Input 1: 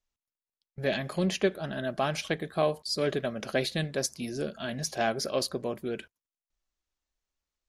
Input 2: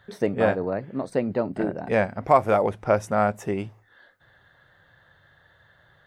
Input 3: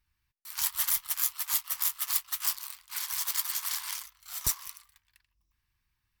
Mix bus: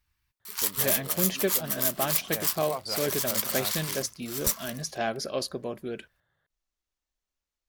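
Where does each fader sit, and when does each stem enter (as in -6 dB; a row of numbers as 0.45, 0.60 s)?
-1.5, -18.0, +2.0 dB; 0.00, 0.40, 0.00 s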